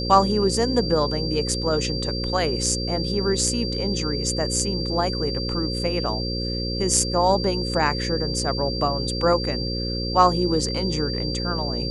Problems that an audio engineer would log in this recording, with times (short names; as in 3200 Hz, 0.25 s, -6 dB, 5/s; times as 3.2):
buzz 60 Hz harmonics 9 -28 dBFS
tone 4700 Hz -29 dBFS